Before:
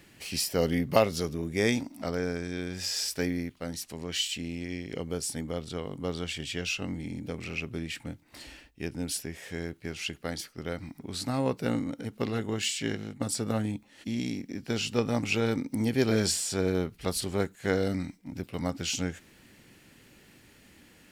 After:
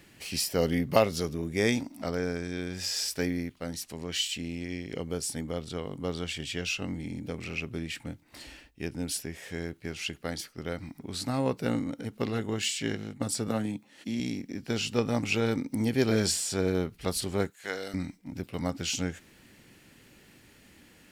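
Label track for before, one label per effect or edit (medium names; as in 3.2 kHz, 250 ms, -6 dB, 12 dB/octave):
13.480000	14.200000	high-pass 120 Hz 24 dB/octave
17.500000	17.940000	high-pass 1.3 kHz 6 dB/octave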